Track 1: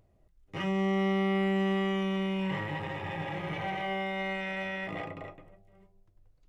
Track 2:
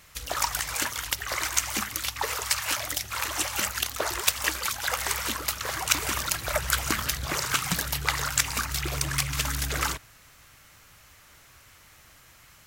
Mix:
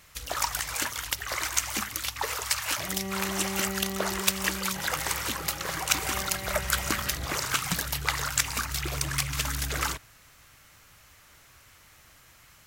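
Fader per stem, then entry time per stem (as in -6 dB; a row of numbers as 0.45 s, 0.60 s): -6.5 dB, -1.5 dB; 2.25 s, 0.00 s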